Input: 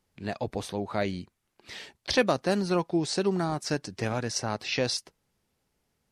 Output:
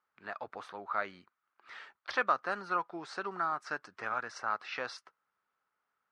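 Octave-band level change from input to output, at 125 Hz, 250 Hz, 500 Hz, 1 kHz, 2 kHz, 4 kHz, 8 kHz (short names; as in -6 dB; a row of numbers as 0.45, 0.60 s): -24.0, -19.0, -12.5, +0.5, -1.5, -15.0, -19.5 dB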